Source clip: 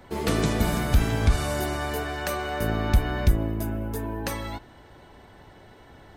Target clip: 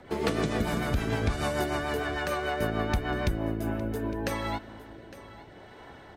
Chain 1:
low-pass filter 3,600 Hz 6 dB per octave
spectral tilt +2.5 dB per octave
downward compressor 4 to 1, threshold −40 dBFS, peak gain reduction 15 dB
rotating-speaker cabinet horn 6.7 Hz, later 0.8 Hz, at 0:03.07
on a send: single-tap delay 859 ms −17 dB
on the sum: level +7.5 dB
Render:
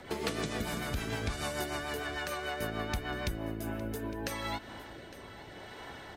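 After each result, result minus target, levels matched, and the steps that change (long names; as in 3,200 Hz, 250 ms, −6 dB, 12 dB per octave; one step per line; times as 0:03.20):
downward compressor: peak gain reduction +7.5 dB; 4,000 Hz band +5.0 dB
change: downward compressor 4 to 1, threshold −30.5 dBFS, peak gain reduction 7.5 dB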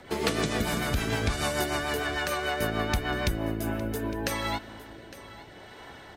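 4,000 Hz band +5.0 dB
change: low-pass filter 1,200 Hz 6 dB per octave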